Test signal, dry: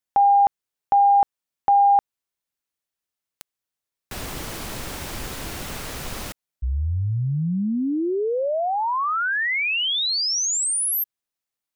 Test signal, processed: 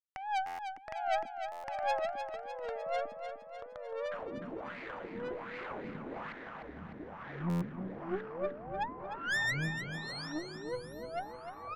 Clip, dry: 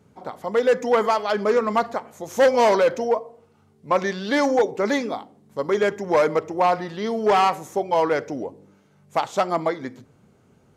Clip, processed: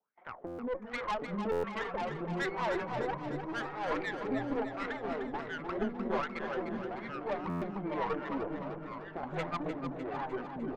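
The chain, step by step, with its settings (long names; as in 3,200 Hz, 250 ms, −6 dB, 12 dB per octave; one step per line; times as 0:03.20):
adaptive Wiener filter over 9 samples
high-pass filter 140 Hz 12 dB per octave
noise gate −46 dBFS, range −17 dB
low-pass filter 6,400 Hz 12 dB per octave
dynamic equaliser 500 Hz, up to −6 dB, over −30 dBFS, Q 0.72
in parallel at +3 dB: downward compressor, threshold −31 dBFS
on the sum: pitch vibrato 4.3 Hz 95 cents
LFO wah 1.3 Hz 200–2,200 Hz, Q 4.5
tube saturation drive 28 dB, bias 0.7
delay with pitch and tempo change per echo 690 ms, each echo −3 semitones, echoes 3
on a send: repeating echo 302 ms, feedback 58%, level −8 dB
on the sum: buffer that repeats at 0:00.46/0:01.51/0:07.49, samples 512, times 10
level −1.5 dB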